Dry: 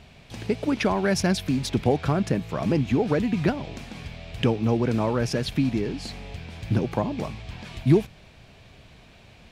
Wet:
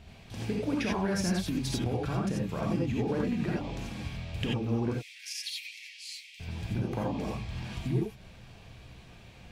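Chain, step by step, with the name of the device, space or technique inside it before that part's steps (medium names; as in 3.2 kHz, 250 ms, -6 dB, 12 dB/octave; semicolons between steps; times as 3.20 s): 4.92–6.40 s: steep high-pass 2 kHz 72 dB/octave; ASMR close-microphone chain (bass shelf 200 Hz +5.5 dB; compression 6:1, threshold -23 dBFS, peak gain reduction 13 dB; treble shelf 9.7 kHz +4.5 dB); gated-style reverb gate 110 ms rising, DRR -3 dB; trim -7 dB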